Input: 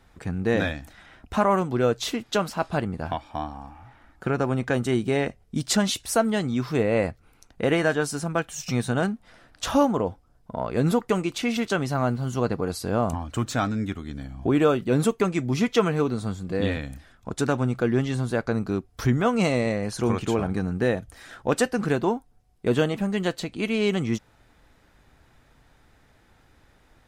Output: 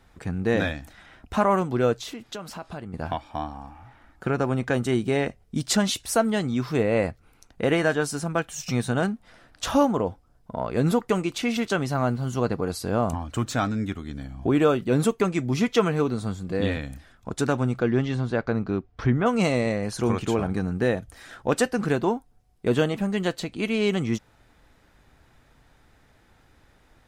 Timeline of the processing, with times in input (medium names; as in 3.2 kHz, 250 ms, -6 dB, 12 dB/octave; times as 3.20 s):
1.94–2.94 s: compression 3:1, threshold -35 dBFS
17.78–19.25 s: low-pass 6 kHz -> 2.5 kHz